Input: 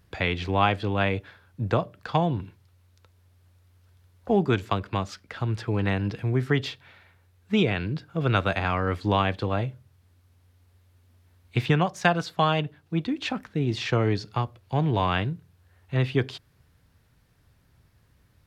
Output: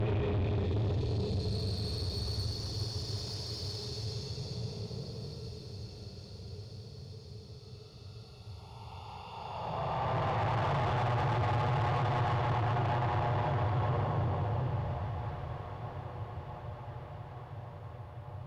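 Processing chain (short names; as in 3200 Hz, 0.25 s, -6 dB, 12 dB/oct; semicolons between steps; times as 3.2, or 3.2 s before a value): Paulstretch 46×, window 0.05 s, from 14.14; fixed phaser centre 650 Hz, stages 4; tube stage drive 35 dB, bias 0.3; high shelf 4000 Hz -12 dB; on a send: diffused feedback echo 1.755 s, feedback 56%, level -12 dB; on the sum: gain +6.5 dB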